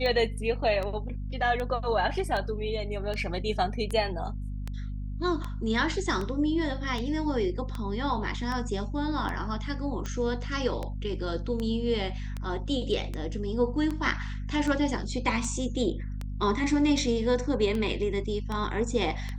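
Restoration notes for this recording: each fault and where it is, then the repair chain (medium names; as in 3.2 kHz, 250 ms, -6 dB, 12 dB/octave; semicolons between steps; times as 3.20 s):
hum 50 Hz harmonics 5 -34 dBFS
tick 78 rpm -20 dBFS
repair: de-click; de-hum 50 Hz, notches 5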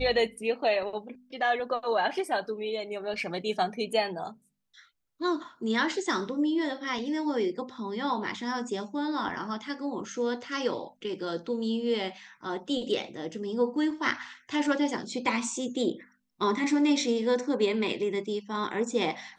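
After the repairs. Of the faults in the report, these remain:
nothing left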